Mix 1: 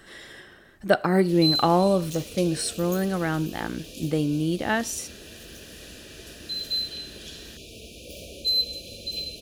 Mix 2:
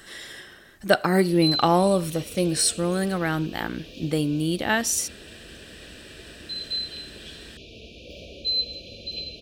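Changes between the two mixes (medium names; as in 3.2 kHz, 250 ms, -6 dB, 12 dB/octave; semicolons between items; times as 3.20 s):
background: add distance through air 260 m; master: add treble shelf 2.3 kHz +8.5 dB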